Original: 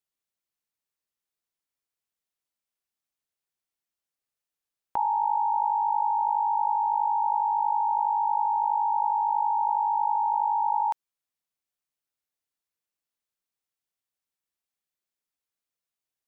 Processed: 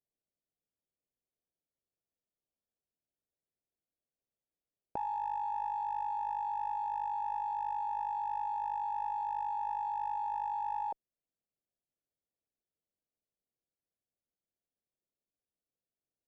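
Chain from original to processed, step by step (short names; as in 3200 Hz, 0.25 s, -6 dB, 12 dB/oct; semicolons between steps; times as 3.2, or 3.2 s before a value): steep low-pass 680 Hz 36 dB/oct; in parallel at -3 dB: one-sided clip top -35.5 dBFS; on the sum: gain -2 dB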